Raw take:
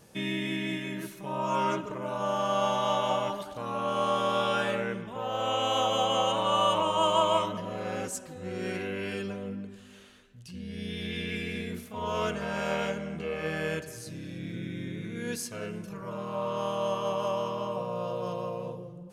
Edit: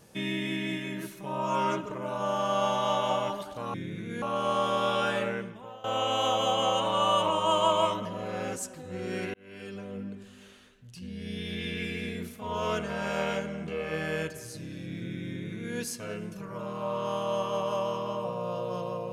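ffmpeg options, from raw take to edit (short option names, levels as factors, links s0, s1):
-filter_complex "[0:a]asplit=5[s0][s1][s2][s3][s4];[s0]atrim=end=3.742[s5];[s1]atrim=start=14.798:end=15.282[s6];[s2]atrim=start=3.738:end=5.36,asetpts=PTS-STARTPTS,afade=t=out:st=1.072:d=0.55:silence=0.105925[s7];[s3]atrim=start=5.36:end=8.86,asetpts=PTS-STARTPTS,afade=t=in:d=0.004:c=hsin:silence=0.105925,afade=t=out:st=3.496:d=0.004:c=hsin[s8];[s4]atrim=start=8.86,asetpts=PTS-STARTPTS,afade=t=in:d=0.74[s9];[s5][s6]acrossfade=d=0.004:c1=hsin:c2=hsin[s10];[s7][s8][s9]concat=n=3:v=0:a=1[s11];[s10][s11]acrossfade=d=0.004:c1=hsin:c2=hsin"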